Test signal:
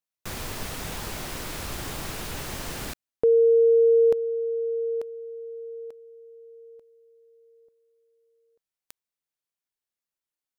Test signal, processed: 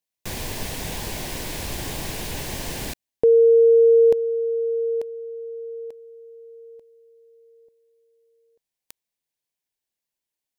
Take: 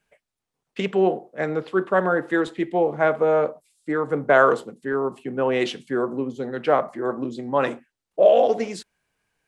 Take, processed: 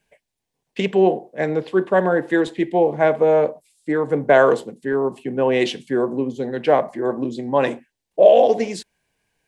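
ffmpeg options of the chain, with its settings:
ffmpeg -i in.wav -af "equalizer=frequency=1300:width_type=o:width=0.29:gain=-14,volume=4dB" out.wav

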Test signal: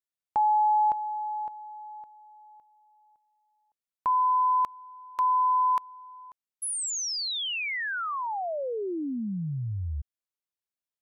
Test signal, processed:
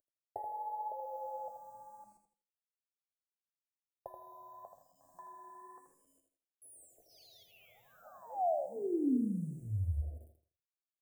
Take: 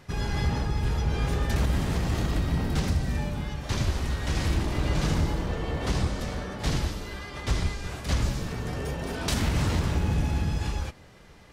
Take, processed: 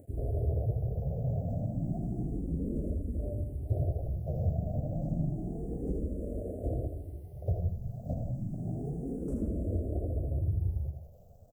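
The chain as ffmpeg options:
ffmpeg -i in.wav -filter_complex "[0:a]acompressor=mode=upward:threshold=-34dB:ratio=2.5:attack=5.2:release=104:knee=2.83:detection=peak,afwtdn=0.0355,asplit=2[link_01][link_02];[link_02]adelay=133,lowpass=frequency=1300:poles=1,volume=-17dB,asplit=2[link_03][link_04];[link_04]adelay=133,lowpass=frequency=1300:poles=1,volume=0.33,asplit=2[link_05][link_06];[link_06]adelay=133,lowpass=frequency=1300:poles=1,volume=0.33[link_07];[link_03][link_05][link_07]amix=inputs=3:normalize=0[link_08];[link_01][link_08]amix=inputs=2:normalize=0,acrusher=bits=8:mix=0:aa=0.000001,acompressor=threshold=-26dB:ratio=6:attack=81:release=497,firequalizer=gain_entry='entry(180,0);entry(680,10);entry(960,-22);entry(3800,-26);entry(8000,-4)':delay=0.05:min_phase=1,flanger=delay=3.2:depth=9.2:regen=58:speed=0.99:shape=triangular,equalizer=frequency=110:width=0.87:gain=6,asplit=2[link_09][link_10];[link_10]aecho=0:1:81|162|243|324:0.447|0.13|0.0376|0.0109[link_11];[link_09][link_11]amix=inputs=2:normalize=0,asplit=2[link_12][link_13];[link_13]afreqshift=0.3[link_14];[link_12][link_14]amix=inputs=2:normalize=1" out.wav

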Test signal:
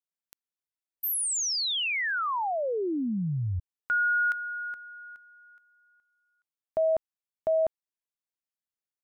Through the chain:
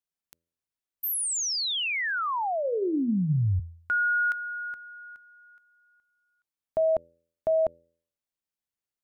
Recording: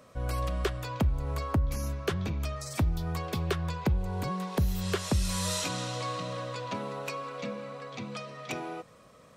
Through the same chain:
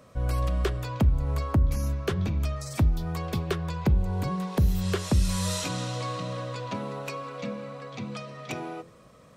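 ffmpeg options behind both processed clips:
ffmpeg -i in.wav -af "lowshelf=frequency=320:gain=6,bandreject=frequency=83.8:width_type=h:width=4,bandreject=frequency=167.6:width_type=h:width=4,bandreject=frequency=251.4:width_type=h:width=4,bandreject=frequency=335.2:width_type=h:width=4,bandreject=frequency=419:width_type=h:width=4,bandreject=frequency=502.8:width_type=h:width=4,bandreject=frequency=586.6:width_type=h:width=4" out.wav

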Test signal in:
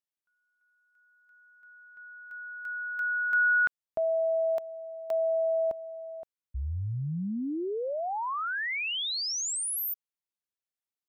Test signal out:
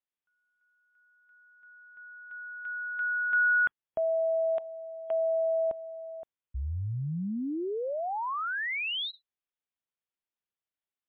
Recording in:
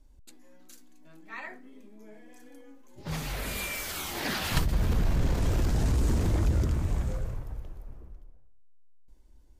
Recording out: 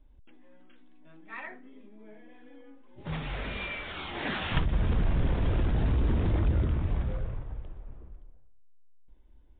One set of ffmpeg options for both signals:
ffmpeg -i in.wav -ar 8000 -c:a libmp3lame -b:a 40k out.mp3

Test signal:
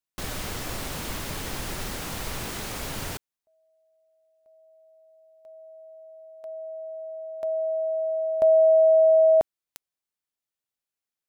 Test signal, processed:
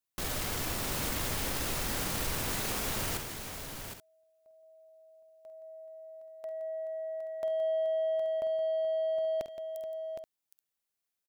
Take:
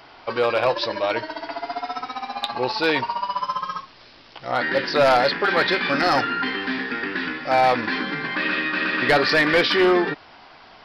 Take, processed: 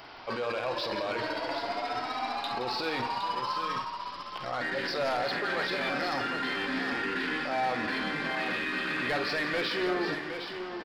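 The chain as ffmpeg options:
ffmpeg -i in.wav -af "highshelf=frequency=9400:gain=5,areverse,acompressor=threshold=-27dB:ratio=12:attack=0.11:release=45:knee=1:detection=peak,areverse,aeval=exprs='0.0631*(cos(1*acos(clip(val(0)/0.0631,-1,1)))-cos(1*PI/2))+0.00126*(cos(7*acos(clip(val(0)/0.0631,-1,1)))-cos(7*PI/2))':channel_layout=same,aecho=1:1:49|72|170|428|764|829:0.299|0.119|0.251|0.2|0.398|0.168" out.wav

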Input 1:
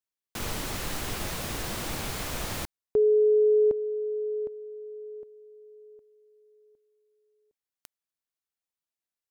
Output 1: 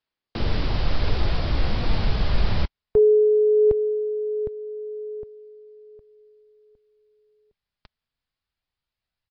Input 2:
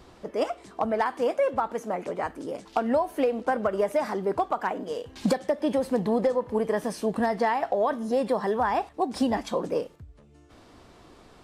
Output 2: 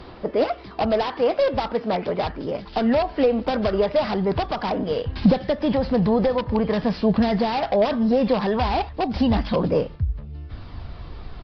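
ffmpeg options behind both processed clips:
ffmpeg -i in.wav -filter_complex "[0:a]asubboost=boost=6:cutoff=130,asplit=2[link_01][link_02];[link_02]alimiter=limit=-23.5dB:level=0:latency=1:release=11,volume=0dB[link_03];[link_01][link_03]amix=inputs=2:normalize=0,aphaser=in_gain=1:out_gain=1:delay=5:decay=0.22:speed=0.2:type=sinusoidal,acrossover=split=920[link_04][link_05];[link_05]aeval=exprs='(mod(25.1*val(0)+1,2)-1)/25.1':channel_layout=same[link_06];[link_04][link_06]amix=inputs=2:normalize=0,aresample=11025,aresample=44100,volume=2.5dB" -ar 32000 -c:a aac -b:a 48k out.aac

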